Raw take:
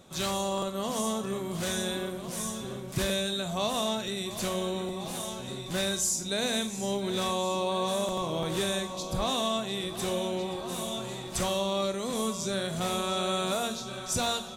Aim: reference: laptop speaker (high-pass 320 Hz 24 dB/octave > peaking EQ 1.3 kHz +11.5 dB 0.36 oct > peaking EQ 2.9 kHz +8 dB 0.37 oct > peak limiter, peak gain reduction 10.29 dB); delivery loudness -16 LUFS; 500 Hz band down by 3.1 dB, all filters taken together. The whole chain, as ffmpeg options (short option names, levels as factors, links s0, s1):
-af "highpass=f=320:w=0.5412,highpass=f=320:w=1.3066,equalizer=f=500:t=o:g=-4,equalizer=f=1300:t=o:w=0.36:g=11.5,equalizer=f=2900:t=o:w=0.37:g=8,volume=7.94,alimiter=limit=0.473:level=0:latency=1"